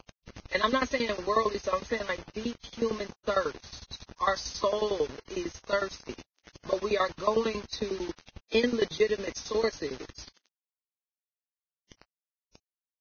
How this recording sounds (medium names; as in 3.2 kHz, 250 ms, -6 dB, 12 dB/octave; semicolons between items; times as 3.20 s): tremolo saw down 11 Hz, depth 95%; a quantiser's noise floor 8-bit, dither none; Vorbis